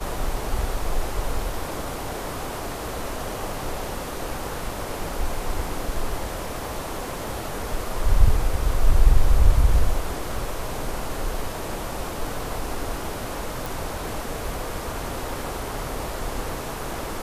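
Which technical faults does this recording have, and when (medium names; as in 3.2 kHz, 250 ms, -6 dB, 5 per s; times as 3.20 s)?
13.66 s: pop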